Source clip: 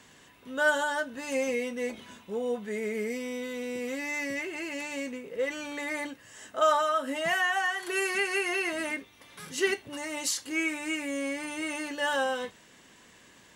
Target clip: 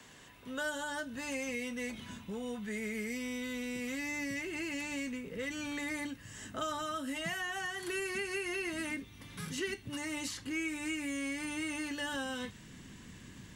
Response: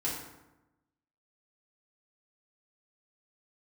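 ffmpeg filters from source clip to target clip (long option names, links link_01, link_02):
-filter_complex "[0:a]asubboost=boost=9:cutoff=190,acrossover=split=85|400|1000|3100[link_01][link_02][link_03][link_04][link_05];[link_01]acompressor=threshold=-60dB:ratio=4[link_06];[link_02]acompressor=threshold=-43dB:ratio=4[link_07];[link_03]acompressor=threshold=-47dB:ratio=4[link_08];[link_04]acompressor=threshold=-42dB:ratio=4[link_09];[link_05]acompressor=threshold=-45dB:ratio=4[link_10];[link_06][link_07][link_08][link_09][link_10]amix=inputs=5:normalize=0"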